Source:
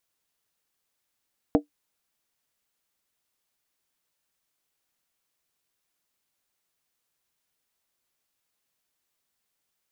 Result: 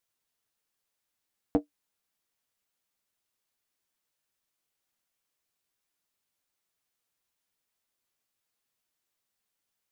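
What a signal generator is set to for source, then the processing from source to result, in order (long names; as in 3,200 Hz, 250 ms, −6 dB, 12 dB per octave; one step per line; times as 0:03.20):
struck skin, lowest mode 294 Hz, decay 0.12 s, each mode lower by 4 dB, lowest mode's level −12.5 dB
flanger 0.23 Hz, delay 8.3 ms, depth 2.8 ms, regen −37%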